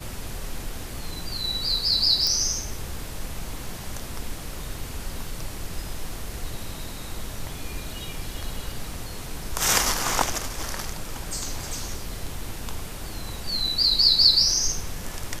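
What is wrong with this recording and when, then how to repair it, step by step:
2.27 s: pop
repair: de-click

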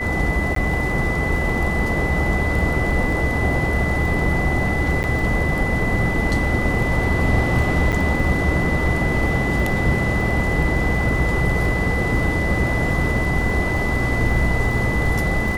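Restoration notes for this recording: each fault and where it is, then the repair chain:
crackle 21 per s -27 dBFS
whine 2 kHz -24 dBFS
0.55–0.56 s: dropout 13 ms
5.03–5.04 s: dropout 9.6 ms
7.92–7.93 s: dropout 7.6 ms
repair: de-click; band-stop 2 kHz, Q 30; interpolate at 0.55 s, 13 ms; interpolate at 5.03 s, 9.6 ms; interpolate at 7.92 s, 7.6 ms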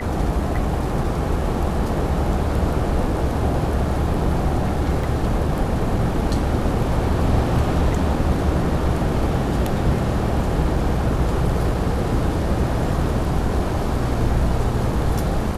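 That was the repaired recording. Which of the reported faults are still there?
nothing left

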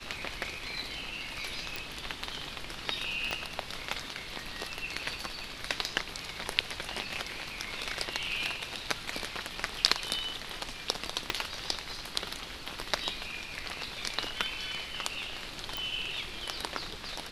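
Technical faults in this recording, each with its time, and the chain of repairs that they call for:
1.76 s: pop
3.31 s: pop -18 dBFS
11.30 s: pop
15.77 s: pop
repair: de-click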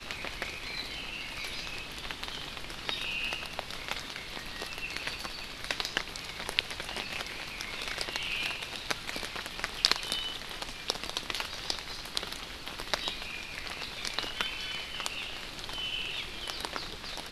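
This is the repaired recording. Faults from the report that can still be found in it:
3.31 s: pop
11.30 s: pop
15.77 s: pop

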